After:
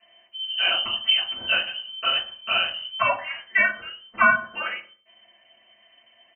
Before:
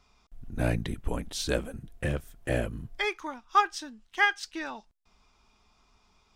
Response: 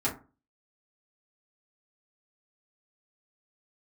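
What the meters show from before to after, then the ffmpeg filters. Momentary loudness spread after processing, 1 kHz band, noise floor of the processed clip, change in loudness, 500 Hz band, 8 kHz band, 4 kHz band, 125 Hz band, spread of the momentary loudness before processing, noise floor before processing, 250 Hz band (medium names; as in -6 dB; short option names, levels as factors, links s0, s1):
12 LU, +4.0 dB, -60 dBFS, +8.0 dB, 0.0 dB, under -35 dB, +17.5 dB, -16.5 dB, 14 LU, -67 dBFS, -7.0 dB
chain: -filter_complex "[0:a]lowpass=f=2600:t=q:w=0.5098,lowpass=f=2600:t=q:w=0.6013,lowpass=f=2600:t=q:w=0.9,lowpass=f=2600:t=q:w=2.563,afreqshift=-3100,asplit=2[s0][s1];[s1]adelay=114,lowpass=f=1300:p=1,volume=0.1,asplit=2[s2][s3];[s3]adelay=114,lowpass=f=1300:p=1,volume=0.26[s4];[s0][s2][s4]amix=inputs=3:normalize=0[s5];[1:a]atrim=start_sample=2205,asetrate=36603,aresample=44100[s6];[s5][s6]afir=irnorm=-1:irlink=0"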